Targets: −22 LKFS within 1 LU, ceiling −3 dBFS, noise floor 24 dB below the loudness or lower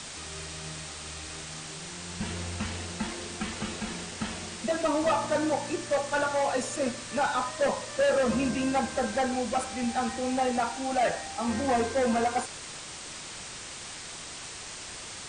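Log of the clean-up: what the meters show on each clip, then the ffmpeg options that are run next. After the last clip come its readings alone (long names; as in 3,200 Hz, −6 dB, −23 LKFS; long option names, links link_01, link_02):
background noise floor −41 dBFS; target noise floor −55 dBFS; integrated loudness −30.5 LKFS; sample peak −16.0 dBFS; target loudness −22.0 LKFS
→ -af "afftdn=noise_reduction=14:noise_floor=-41"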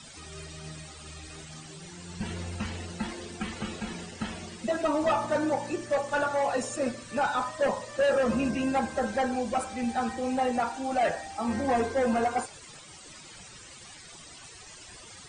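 background noise floor −48 dBFS; target noise floor −54 dBFS
→ -af "afftdn=noise_reduction=6:noise_floor=-48"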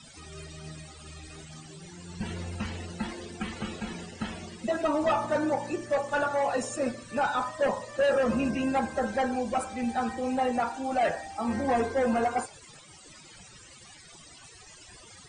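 background noise floor −51 dBFS; target noise floor −54 dBFS
→ -af "afftdn=noise_reduction=6:noise_floor=-51"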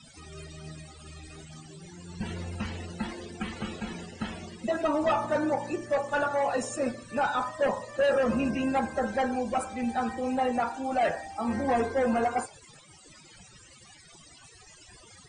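background noise floor −54 dBFS; integrated loudness −29.5 LKFS; sample peak −16.5 dBFS; target loudness −22.0 LKFS
→ -af "volume=7.5dB"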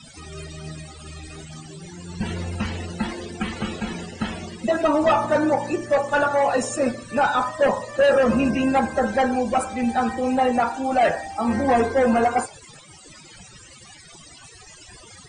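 integrated loudness −22.0 LKFS; sample peak −9.0 dBFS; background noise floor −46 dBFS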